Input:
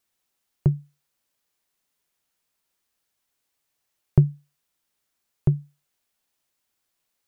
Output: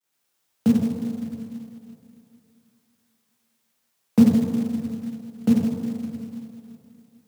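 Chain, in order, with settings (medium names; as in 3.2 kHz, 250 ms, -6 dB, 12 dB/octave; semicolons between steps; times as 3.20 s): plate-style reverb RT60 2.7 s, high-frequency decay 0.8×, DRR -6 dB; companded quantiser 6-bit; frequency shift +85 Hz; trim -2.5 dB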